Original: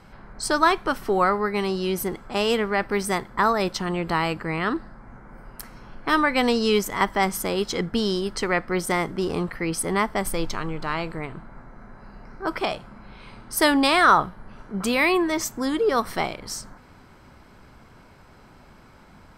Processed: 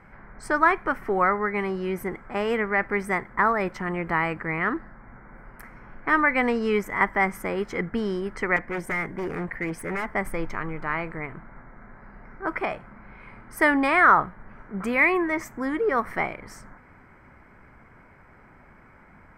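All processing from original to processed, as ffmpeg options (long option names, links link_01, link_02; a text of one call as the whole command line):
ffmpeg -i in.wav -filter_complex "[0:a]asettb=1/sr,asplit=3[link_01][link_02][link_03];[link_01]atrim=end=8.564[link_04];[link_02]atrim=start=8.56:end=10.07,asetpts=PTS-STARTPTS,afade=type=in:duration=0.004:curve=qsin,afade=type=out:start_time=1.506:duration=0.004:curve=qsin,bandreject=frequency=1300:width=5.3,aeval=exprs='0.0841*(abs(mod(val(0)/0.0841+3,4)-2)-1)':channel_layout=same[link_05];[link_03]atrim=start=10.066[link_06];[link_04][link_05]acrossfade=duration=0.004:curve1=hsin:curve2=qsin[link_07];[link_07][link_06]acrossfade=duration=0.004:curve1=qsin:curve2=hsin,highshelf=frequency=2800:width_type=q:width=3:gain=-10.5,bandreject=frequency=2700:width=16,volume=-3dB" out.wav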